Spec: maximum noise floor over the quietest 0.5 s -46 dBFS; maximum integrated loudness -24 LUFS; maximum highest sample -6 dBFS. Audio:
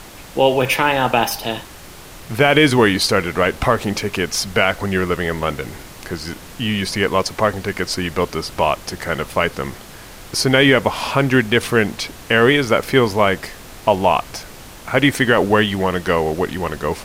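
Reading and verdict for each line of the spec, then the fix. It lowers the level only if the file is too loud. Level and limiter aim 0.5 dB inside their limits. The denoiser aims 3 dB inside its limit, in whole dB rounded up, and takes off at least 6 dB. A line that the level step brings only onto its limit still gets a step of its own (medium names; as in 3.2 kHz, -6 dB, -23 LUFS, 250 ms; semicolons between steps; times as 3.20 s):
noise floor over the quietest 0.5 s -38 dBFS: fail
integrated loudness -17.5 LUFS: fail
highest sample -1.0 dBFS: fail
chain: noise reduction 6 dB, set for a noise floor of -38 dBFS; trim -7 dB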